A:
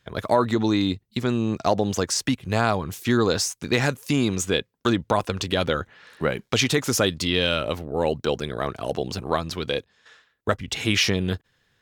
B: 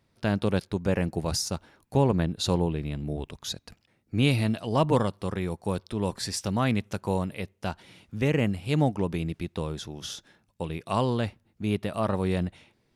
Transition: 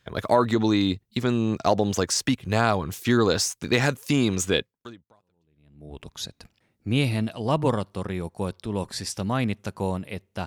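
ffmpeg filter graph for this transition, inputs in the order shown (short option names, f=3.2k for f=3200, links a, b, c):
-filter_complex "[0:a]apad=whole_dur=10.46,atrim=end=10.46,atrim=end=6.02,asetpts=PTS-STARTPTS[a];[1:a]atrim=start=1.87:end=7.73,asetpts=PTS-STARTPTS[b];[a][b]acrossfade=d=1.42:c1=exp:c2=exp"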